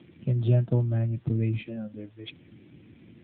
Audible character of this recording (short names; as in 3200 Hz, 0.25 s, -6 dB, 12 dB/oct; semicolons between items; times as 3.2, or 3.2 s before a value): a quantiser's noise floor 10-bit, dither triangular; AMR-NB